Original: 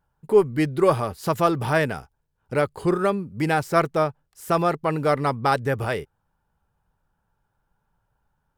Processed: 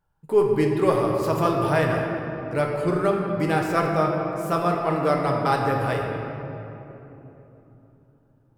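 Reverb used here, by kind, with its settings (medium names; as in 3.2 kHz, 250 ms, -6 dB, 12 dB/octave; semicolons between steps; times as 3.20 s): simulated room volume 180 m³, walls hard, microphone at 0.47 m; trim -3.5 dB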